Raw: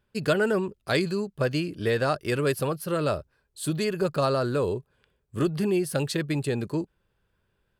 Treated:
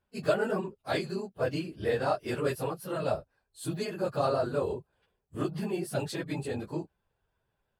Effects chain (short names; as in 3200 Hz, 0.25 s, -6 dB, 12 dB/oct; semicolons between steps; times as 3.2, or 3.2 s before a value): phase scrambler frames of 50 ms; bell 760 Hz +9 dB 0.75 oct; gain -7.5 dB